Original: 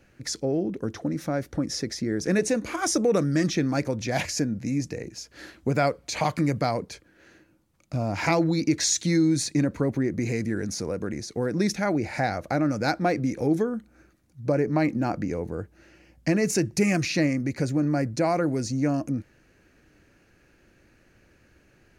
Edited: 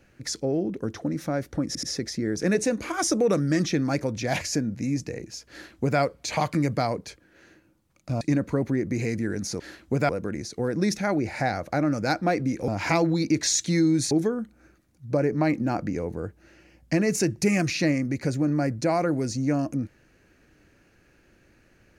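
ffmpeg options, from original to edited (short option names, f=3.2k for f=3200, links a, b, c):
-filter_complex "[0:a]asplit=8[a][b][c][d][e][f][g][h];[a]atrim=end=1.752[i];[b]atrim=start=1.668:end=1.752[j];[c]atrim=start=1.668:end=8.052[k];[d]atrim=start=9.478:end=10.872[l];[e]atrim=start=5.348:end=5.842[m];[f]atrim=start=10.868:end=13.462[n];[g]atrim=start=8.048:end=9.482[o];[h]atrim=start=13.458[p];[i][j]acrossfade=d=0.004:c1=hsin:c2=hsin[q];[q][k]acrossfade=d=0.004:c1=hsin:c2=hsin[r];[r][l]acrossfade=d=0.004:c1=hsin:c2=hsin[s];[s][m]acrossfade=d=0.004:c1=hsin:c2=hsin[t];[t][n]acrossfade=d=0.004:c1=hsin:c2=hsin[u];[u][o]acrossfade=d=0.004:c1=hsin:c2=hsin[v];[v][p]acrossfade=d=0.004:c1=hsin:c2=hsin"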